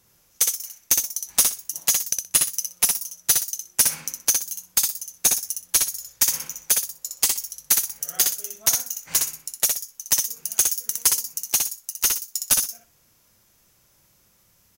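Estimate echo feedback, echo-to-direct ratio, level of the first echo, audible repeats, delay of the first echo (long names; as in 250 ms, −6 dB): 17%, −4.0 dB, −4.0 dB, 3, 62 ms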